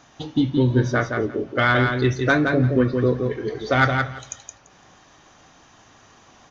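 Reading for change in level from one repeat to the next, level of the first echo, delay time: -16.0 dB, -5.0 dB, 170 ms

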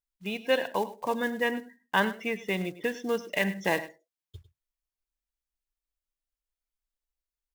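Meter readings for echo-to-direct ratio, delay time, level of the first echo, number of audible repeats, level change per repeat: -15.5 dB, 102 ms, -15.5 dB, 1, no regular repeats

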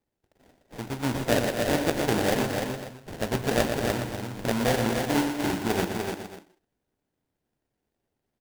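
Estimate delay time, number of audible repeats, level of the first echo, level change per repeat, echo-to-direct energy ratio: 118 ms, 5, -8.0 dB, no regular repeats, -2.0 dB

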